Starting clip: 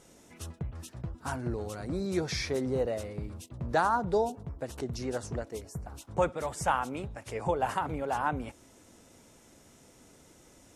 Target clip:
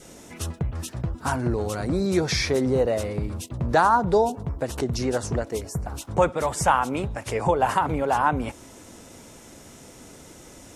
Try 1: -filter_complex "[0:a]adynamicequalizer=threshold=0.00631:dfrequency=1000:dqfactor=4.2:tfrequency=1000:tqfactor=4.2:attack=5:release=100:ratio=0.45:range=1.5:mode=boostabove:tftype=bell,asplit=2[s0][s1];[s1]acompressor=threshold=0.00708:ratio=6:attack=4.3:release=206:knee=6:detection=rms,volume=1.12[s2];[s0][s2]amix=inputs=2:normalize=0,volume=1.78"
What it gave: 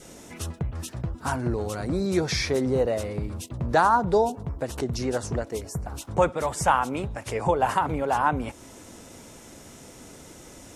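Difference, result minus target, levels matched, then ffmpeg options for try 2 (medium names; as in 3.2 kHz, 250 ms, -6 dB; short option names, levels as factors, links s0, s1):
compression: peak gain reduction +8 dB
-filter_complex "[0:a]adynamicequalizer=threshold=0.00631:dfrequency=1000:dqfactor=4.2:tfrequency=1000:tqfactor=4.2:attack=5:release=100:ratio=0.45:range=1.5:mode=boostabove:tftype=bell,asplit=2[s0][s1];[s1]acompressor=threshold=0.0211:ratio=6:attack=4.3:release=206:knee=6:detection=rms,volume=1.12[s2];[s0][s2]amix=inputs=2:normalize=0,volume=1.78"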